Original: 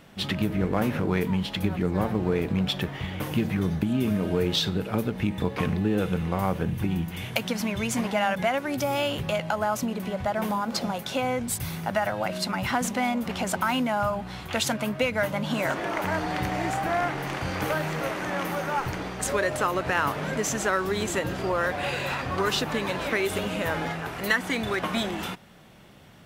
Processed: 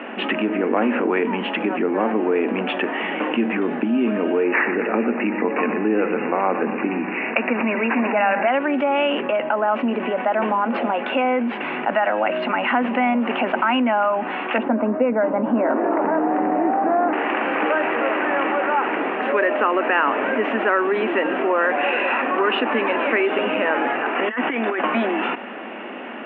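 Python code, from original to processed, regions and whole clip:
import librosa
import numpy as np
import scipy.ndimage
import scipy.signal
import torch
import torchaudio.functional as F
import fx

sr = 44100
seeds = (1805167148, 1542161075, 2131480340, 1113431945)

y = fx.chain(x, sr, fx.echo_feedback(ms=120, feedback_pct=59, wet_db=-13.0),
    fx.resample_bad(factor=8, down='none', up='filtered'), at=(4.43, 8.48))
y = fx.chain(y, sr, fx.lowpass(hz=1800.0, slope=6),
    fx.notch(hz=770.0, q=9.4), at=(9.21, 9.68))
y = fx.chain(y, sr, fx.lowpass(hz=1200.0, slope=12),
    fx.tilt_eq(slope=-2.5), at=(14.58, 17.13))
y = fx.chain(y, sr, fx.hum_notches(base_hz=50, count=4),
    fx.over_compress(threshold_db=-31.0, ratio=-0.5),
    fx.resample_bad(factor=6, down='none', up='filtered'), at=(24.15, 24.81))
y = scipy.signal.sosfilt(scipy.signal.cheby1(5, 1.0, [230.0, 2800.0], 'bandpass', fs=sr, output='sos'), y)
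y = fx.notch(y, sr, hz=2100.0, q=26.0)
y = fx.env_flatten(y, sr, amount_pct=50)
y = y * librosa.db_to_amplitude(4.5)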